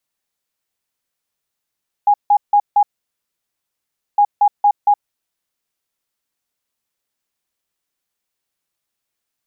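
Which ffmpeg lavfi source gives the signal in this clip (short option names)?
-f lavfi -i "aevalsrc='0.398*sin(2*PI*822*t)*clip(min(mod(mod(t,2.11),0.23),0.07-mod(mod(t,2.11),0.23))/0.005,0,1)*lt(mod(t,2.11),0.92)':d=4.22:s=44100"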